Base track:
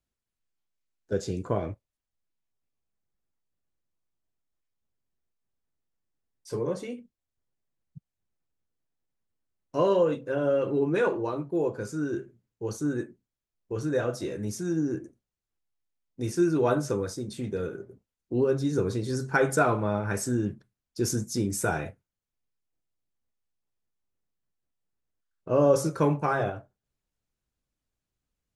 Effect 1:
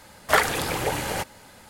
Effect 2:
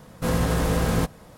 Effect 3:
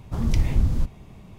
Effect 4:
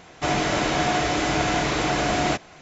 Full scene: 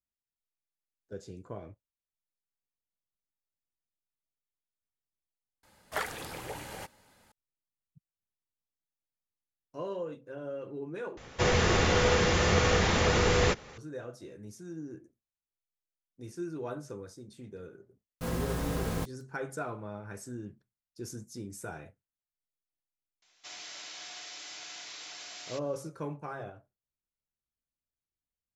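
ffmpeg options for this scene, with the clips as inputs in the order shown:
-filter_complex "[4:a]asplit=2[s0][s1];[0:a]volume=0.2[s2];[s0]afreqshift=-230[s3];[2:a]acrusher=bits=5:mix=0:aa=0.000001[s4];[s1]bandpass=f=5200:t=q:w=1.4:csg=0[s5];[s2]asplit=3[s6][s7][s8];[s6]atrim=end=5.634[s9];[1:a]atrim=end=1.69,asetpts=PTS-STARTPTS,volume=0.188[s10];[s7]atrim=start=7.316:end=11.174[s11];[s3]atrim=end=2.61,asetpts=PTS-STARTPTS,volume=0.794[s12];[s8]atrim=start=13.776[s13];[s4]atrim=end=1.37,asetpts=PTS-STARTPTS,volume=0.299,afade=t=in:d=0.004:c=hsin,afade=t=out:st=1.366:d=0.004:c=hsin,adelay=17990[s14];[s5]atrim=end=2.61,asetpts=PTS-STARTPTS,volume=0.299,afade=t=in:d=0.004:c=hsin,afade=t=out:st=2.606:d=0.004:c=hsin,adelay=23220[s15];[s9][s10]acrossfade=d=0.004:c1=hsin:c2=hsin[s16];[s16][s11]acrossfade=d=0.004:c1=hsin:c2=hsin[s17];[s17][s12]acrossfade=d=0.004:c1=hsin:c2=hsin[s18];[s18][s13]acrossfade=d=0.004:c1=hsin:c2=hsin[s19];[s19][s14][s15]amix=inputs=3:normalize=0"

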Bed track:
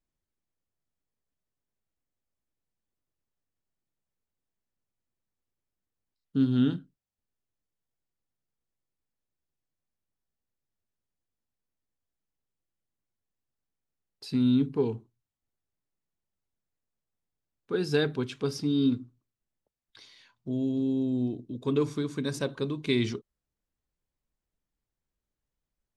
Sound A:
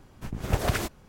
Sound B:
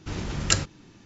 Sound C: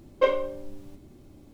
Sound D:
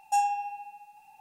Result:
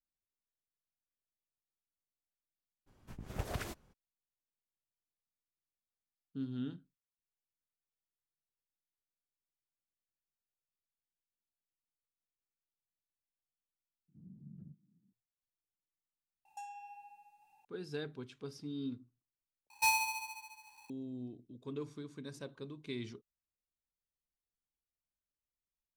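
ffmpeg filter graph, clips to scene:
-filter_complex "[4:a]asplit=2[s0][s1];[0:a]volume=0.168[s2];[2:a]asuperpass=centerf=180:order=4:qfactor=2.2[s3];[s0]acrossover=split=1500|4300[s4][s5][s6];[s4]acompressor=threshold=0.0158:ratio=4[s7];[s5]acompressor=threshold=0.00631:ratio=4[s8];[s6]acompressor=threshold=0.00316:ratio=4[s9];[s7][s8][s9]amix=inputs=3:normalize=0[s10];[s1]aeval=exprs='val(0)*sgn(sin(2*PI*1700*n/s))':c=same[s11];[s2]asplit=3[s12][s13][s14];[s12]atrim=end=14.084[s15];[s3]atrim=end=1.05,asetpts=PTS-STARTPTS,volume=0.158[s16];[s13]atrim=start=15.126:end=19.704[s17];[s11]atrim=end=1.2,asetpts=PTS-STARTPTS,volume=0.562[s18];[s14]atrim=start=20.896[s19];[1:a]atrim=end=1.08,asetpts=PTS-STARTPTS,volume=0.211,afade=t=in:d=0.02,afade=t=out:st=1.06:d=0.02,adelay=2860[s20];[s10]atrim=end=1.2,asetpts=PTS-STARTPTS,volume=0.224,afade=t=in:d=0.004:c=hsin,afade=t=out:st=1.196:d=0.004:c=hsin,adelay=16450[s21];[s15][s16]acrossfade=d=0.004:c1=hsin:c2=hsin[s22];[s22][s17]acrossfade=d=0.004:c1=hsin:c2=hsin[s23];[s23][s18]acrossfade=d=0.004:c1=hsin:c2=hsin[s24];[s24][s19]acrossfade=d=0.004:c1=hsin:c2=hsin[s25];[s25][s20][s21]amix=inputs=3:normalize=0"

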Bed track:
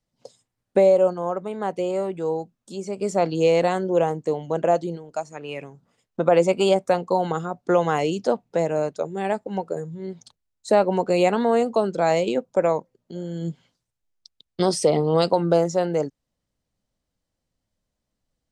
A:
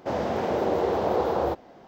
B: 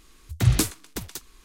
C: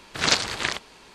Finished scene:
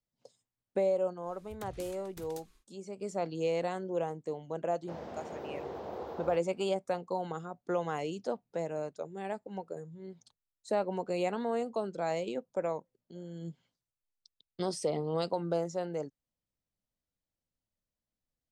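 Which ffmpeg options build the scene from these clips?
-filter_complex "[0:a]volume=0.224[s0];[2:a]acompressor=threshold=0.0224:ratio=12:attack=5.9:release=67:knee=1:detection=peak,atrim=end=1.44,asetpts=PTS-STARTPTS,volume=0.237,afade=t=in:d=0.1,afade=t=out:st=1.34:d=0.1,adelay=1210[s1];[1:a]atrim=end=1.87,asetpts=PTS-STARTPTS,volume=0.15,afade=t=in:d=0.004:c=hsin,afade=t=out:st=1.866:d=0.004:c=hsin,adelay=4820[s2];[s0][s1][s2]amix=inputs=3:normalize=0"

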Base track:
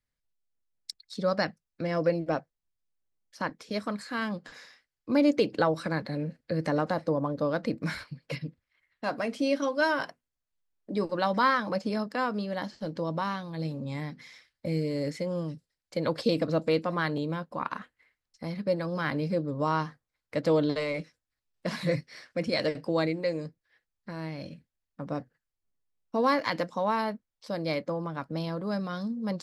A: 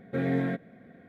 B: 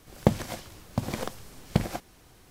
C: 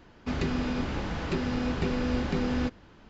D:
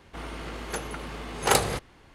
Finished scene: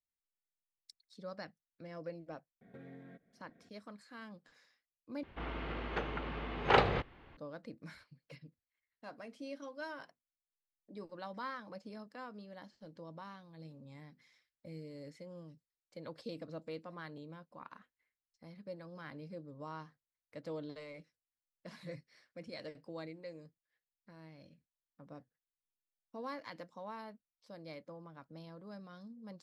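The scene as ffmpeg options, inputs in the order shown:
-filter_complex "[0:a]volume=0.119[s0];[1:a]acompressor=threshold=0.0178:ratio=12:attack=0.28:release=650:knee=1:detection=rms[s1];[4:a]lowpass=f=3300:w=0.5412,lowpass=f=3300:w=1.3066[s2];[s0]asplit=2[s3][s4];[s3]atrim=end=5.234[s5];[s2]atrim=end=2.14,asetpts=PTS-STARTPTS,volume=0.668[s6];[s4]atrim=start=7.366[s7];[s1]atrim=end=1.08,asetpts=PTS-STARTPTS,volume=0.299,afade=t=in:d=0.004:c=hsin,afade=t=out:st=1.076:d=0.004:c=hsin,adelay=2610[s8];[s5][s6]acrossfade=d=0.004:c1=hsin:c2=hsin[s9];[s9][s7]acrossfade=d=0.004:c1=hsin:c2=hsin[s10];[s10][s8]amix=inputs=2:normalize=0"

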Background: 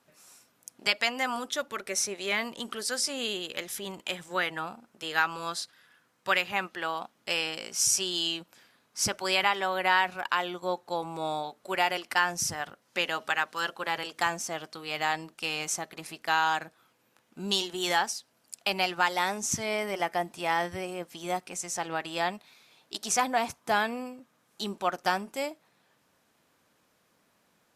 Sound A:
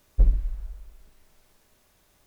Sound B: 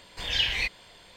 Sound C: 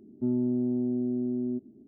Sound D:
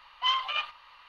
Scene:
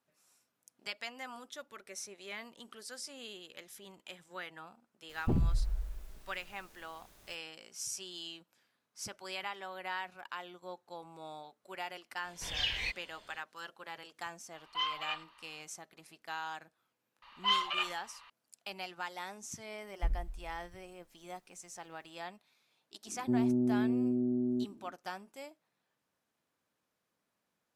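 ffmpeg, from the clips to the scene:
-filter_complex "[1:a]asplit=2[s0][s1];[4:a]asplit=2[s2][s3];[0:a]volume=0.178[s4];[s0]aeval=exprs='0.376*sin(PI/2*5.01*val(0)/0.376)':c=same,atrim=end=2.26,asetpts=PTS-STARTPTS,volume=0.168,afade=t=in:d=0.004:c=hsin,afade=t=out:st=2.256:d=0.004:c=hsin,adelay=224469S[s5];[2:a]atrim=end=1.16,asetpts=PTS-STARTPTS,volume=0.398,afade=t=in:d=0.004:c=hsin,afade=t=out:st=1.156:d=0.004:c=hsin,adelay=12240[s6];[s2]atrim=end=1.08,asetpts=PTS-STARTPTS,volume=0.398,afade=t=in:d=0.004:c=hsin,afade=t=out:st=1.076:d=0.004:c=hsin,adelay=14530[s7];[s3]atrim=end=1.08,asetpts=PTS-STARTPTS,volume=0.708,afade=t=in:d=0.004:c=hsin,afade=t=out:st=1.076:d=0.004:c=hsin,adelay=17220[s8];[s1]atrim=end=2.26,asetpts=PTS-STARTPTS,volume=0.2,afade=t=in:d=0.004:c=hsin,afade=t=out:st=2.256:d=0.004:c=hsin,adelay=19840[s9];[3:a]atrim=end=1.87,asetpts=PTS-STARTPTS,volume=0.794,afade=t=in:d=0.004:c=hsin,afade=t=out:st=1.866:d=0.004:c=hsin,adelay=23060[s10];[s4][s5][s6][s7][s8][s9][s10]amix=inputs=7:normalize=0"

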